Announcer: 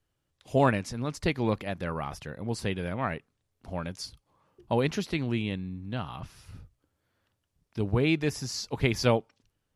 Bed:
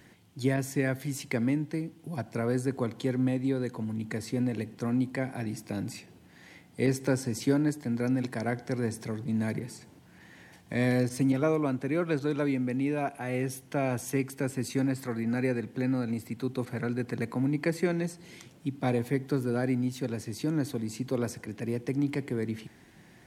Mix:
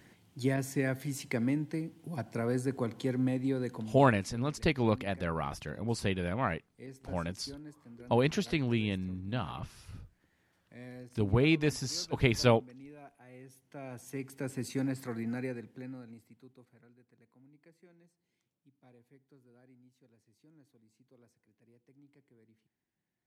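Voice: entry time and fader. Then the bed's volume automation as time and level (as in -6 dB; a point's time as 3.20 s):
3.40 s, -1.0 dB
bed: 3.78 s -3 dB
4.17 s -21.5 dB
13.44 s -21.5 dB
14.55 s -5 dB
15.22 s -5 dB
17.04 s -33.5 dB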